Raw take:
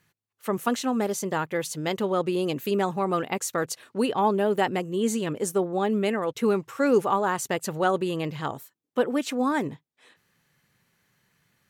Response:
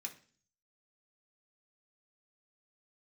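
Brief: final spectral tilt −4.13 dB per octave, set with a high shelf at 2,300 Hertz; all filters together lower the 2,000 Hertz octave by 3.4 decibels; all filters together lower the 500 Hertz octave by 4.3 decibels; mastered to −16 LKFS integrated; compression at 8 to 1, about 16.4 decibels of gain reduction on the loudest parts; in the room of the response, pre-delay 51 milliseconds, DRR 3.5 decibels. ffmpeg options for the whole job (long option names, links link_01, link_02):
-filter_complex "[0:a]equalizer=frequency=500:width_type=o:gain=-5.5,equalizer=frequency=2000:width_type=o:gain=-7,highshelf=frequency=2300:gain=5.5,acompressor=threshold=-38dB:ratio=8,asplit=2[link_01][link_02];[1:a]atrim=start_sample=2205,adelay=51[link_03];[link_02][link_03]afir=irnorm=-1:irlink=0,volume=-1dB[link_04];[link_01][link_04]amix=inputs=2:normalize=0,volume=24dB"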